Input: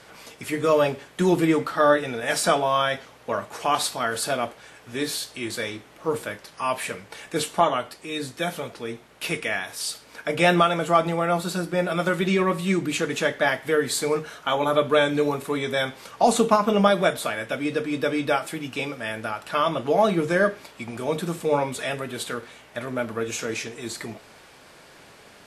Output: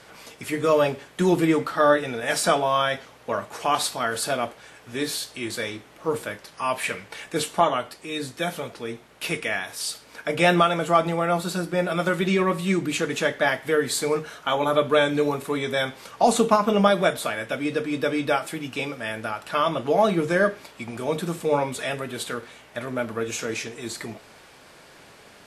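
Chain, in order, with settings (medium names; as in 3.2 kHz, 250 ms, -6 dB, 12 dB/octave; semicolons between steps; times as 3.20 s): 6.83–7.24 s: dynamic bell 2.3 kHz, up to +6 dB, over -45 dBFS, Q 0.95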